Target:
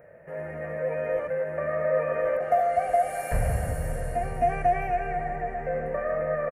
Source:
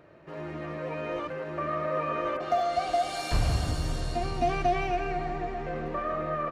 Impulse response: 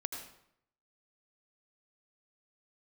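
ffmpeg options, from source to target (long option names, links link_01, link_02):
-af "firequalizer=gain_entry='entry(210,0);entry(330,-13);entry(490,10);entry(1100,-8);entry(1800,7);entry(3600,-25);entry(10000,8)':delay=0.05:min_phase=1"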